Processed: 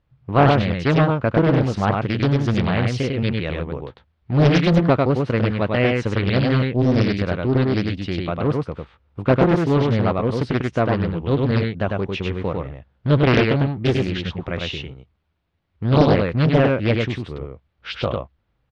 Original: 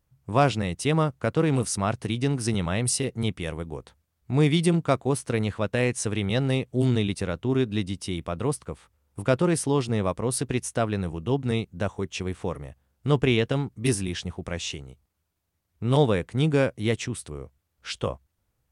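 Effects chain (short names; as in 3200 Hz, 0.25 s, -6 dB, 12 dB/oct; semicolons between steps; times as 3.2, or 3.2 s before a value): LPF 3800 Hz 24 dB/oct; on a send: echo 0.1 s -3 dB; on the sum: Doppler distortion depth 0.92 ms; gain +5 dB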